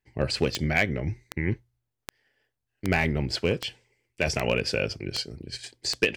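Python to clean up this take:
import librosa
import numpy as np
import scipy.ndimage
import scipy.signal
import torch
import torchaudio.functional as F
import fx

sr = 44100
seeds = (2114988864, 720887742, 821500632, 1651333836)

y = fx.fix_declip(x, sr, threshold_db=-11.5)
y = fx.fix_declick_ar(y, sr, threshold=10.0)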